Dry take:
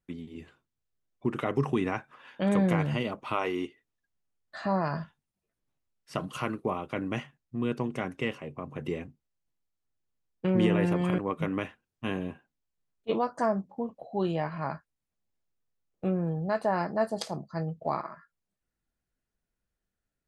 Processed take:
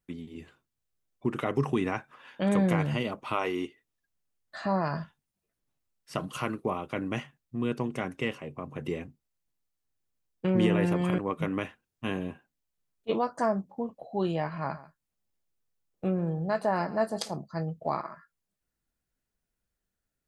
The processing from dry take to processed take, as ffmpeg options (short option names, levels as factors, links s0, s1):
-filter_complex "[0:a]asettb=1/sr,asplit=3[s0][s1][s2];[s0]atrim=end=14.474[s3];[s1]atrim=start=14.47:end=17.29,asetpts=PTS-STARTPTS,afade=t=in:d=0.004:c=qsin,afade=t=out:st=2.816:d=0.004:c=qsin,aecho=1:1:139:0.133,atrim=end_sample=124362[s4];[s2]atrim=start=17.286[s5];[s3][s4]acrossfade=d=0.004:c1=hsin:c2=qsin[s6];[s6][s5]acrossfade=d=0.004:c1=qsin:c2=hsin,highshelf=f=6200:g=4.5"